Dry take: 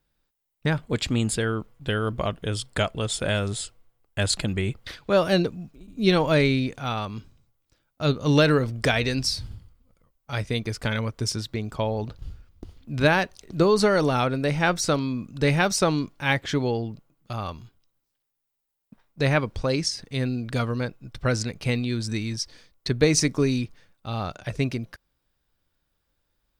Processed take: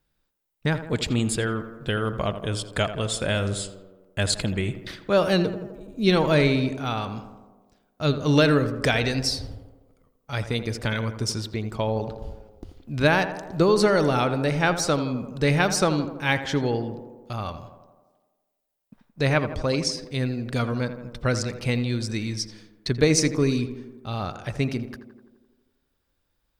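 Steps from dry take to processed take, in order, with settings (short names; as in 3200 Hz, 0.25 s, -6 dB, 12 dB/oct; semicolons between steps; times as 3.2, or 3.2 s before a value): tape echo 83 ms, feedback 74%, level -9.5 dB, low-pass 1700 Hz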